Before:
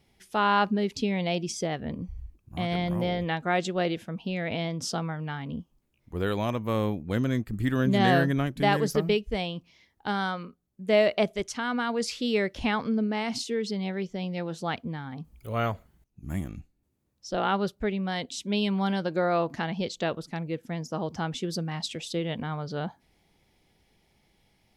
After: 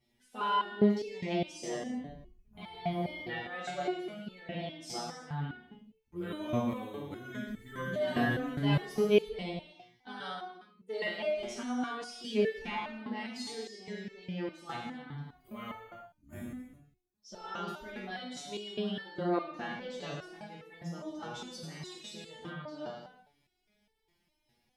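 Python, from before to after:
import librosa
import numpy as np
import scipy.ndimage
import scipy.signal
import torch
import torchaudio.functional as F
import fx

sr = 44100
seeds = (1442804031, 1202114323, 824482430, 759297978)

y = fx.spec_quant(x, sr, step_db=15)
y = fx.rev_gated(y, sr, seeds[0], gate_ms=390, shape='falling', drr_db=-3.0)
y = fx.resonator_held(y, sr, hz=4.9, low_hz=120.0, high_hz=440.0)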